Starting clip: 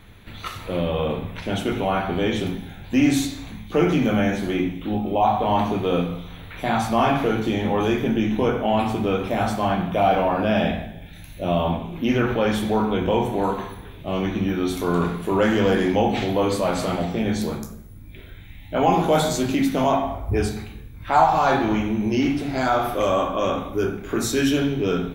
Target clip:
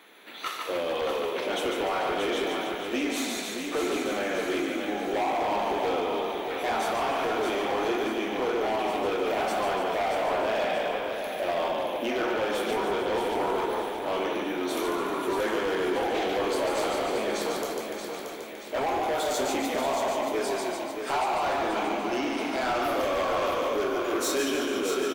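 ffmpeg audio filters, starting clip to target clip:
ffmpeg -i in.wav -filter_complex "[0:a]asplit=2[link_01][link_02];[link_02]asplit=7[link_03][link_04][link_05][link_06][link_07][link_08][link_09];[link_03]adelay=146,afreqshift=-30,volume=-4.5dB[link_10];[link_04]adelay=292,afreqshift=-60,volume=-9.7dB[link_11];[link_05]adelay=438,afreqshift=-90,volume=-14.9dB[link_12];[link_06]adelay=584,afreqshift=-120,volume=-20.1dB[link_13];[link_07]adelay=730,afreqshift=-150,volume=-25.3dB[link_14];[link_08]adelay=876,afreqshift=-180,volume=-30.5dB[link_15];[link_09]adelay=1022,afreqshift=-210,volume=-35.7dB[link_16];[link_10][link_11][link_12][link_13][link_14][link_15][link_16]amix=inputs=7:normalize=0[link_17];[link_01][link_17]amix=inputs=2:normalize=0,acompressor=threshold=-20dB:ratio=6,highpass=frequency=330:width=0.5412,highpass=frequency=330:width=1.3066,asoftclip=type=hard:threshold=-24.5dB,asplit=2[link_18][link_19];[link_19]aecho=0:1:628|1256|1884|2512|3140|3768:0.473|0.222|0.105|0.0491|0.0231|0.0109[link_20];[link_18][link_20]amix=inputs=2:normalize=0" out.wav

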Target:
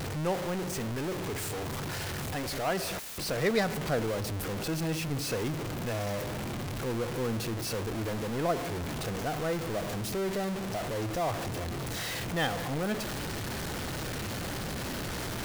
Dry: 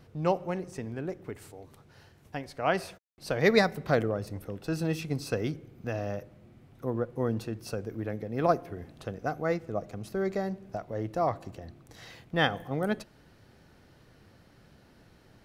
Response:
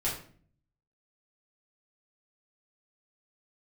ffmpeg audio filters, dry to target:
-af "aeval=exprs='val(0)+0.5*0.0794*sgn(val(0))':channel_layout=same,volume=-7.5dB"

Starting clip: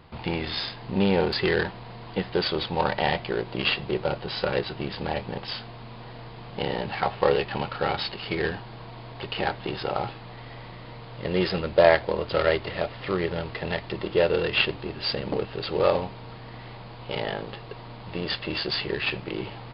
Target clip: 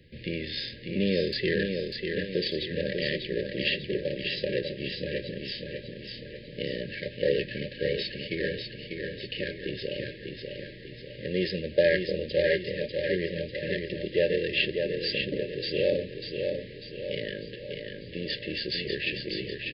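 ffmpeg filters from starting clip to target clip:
ffmpeg -i in.wav -filter_complex "[0:a]afftfilt=real='re*(1-between(b*sr/4096,610,1600))':imag='im*(1-between(b*sr/4096,610,1600))':win_size=4096:overlap=0.75,acrossover=split=130|980[link_01][link_02][link_03];[link_01]asoftclip=type=tanh:threshold=-40dB[link_04];[link_04][link_02][link_03]amix=inputs=3:normalize=0,aecho=1:1:595|1190|1785|2380|2975|3570:0.562|0.27|0.13|0.0622|0.0299|0.0143,volume=-3.5dB" out.wav

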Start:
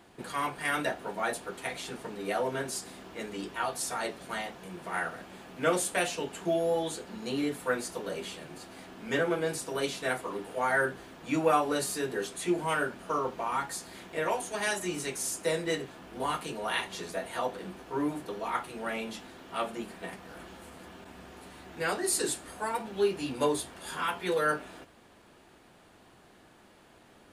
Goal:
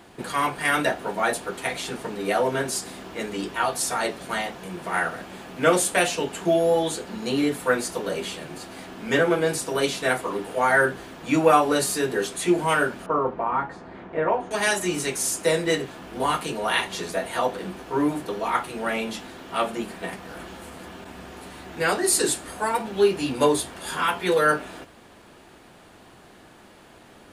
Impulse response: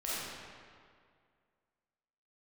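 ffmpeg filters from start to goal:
-filter_complex "[0:a]asettb=1/sr,asplit=3[link_01][link_02][link_03];[link_01]atrim=end=13.064[link_04];[link_02]atrim=start=13.06:end=14.51,asetpts=PTS-STARTPTS,afade=type=in:duration=0.004:curve=qsin,afade=type=out:start_time=1.446:duration=0.004:curve=qsin,lowpass=1400[link_05];[link_03]atrim=start=14.506[link_06];[link_04][link_05]acrossfade=duration=0.004:curve1=hsin:curve2=qsin[link_07];[link_07][link_06]acrossfade=duration=0.004:curve1=qsin:curve2=hsin,volume=8dB"

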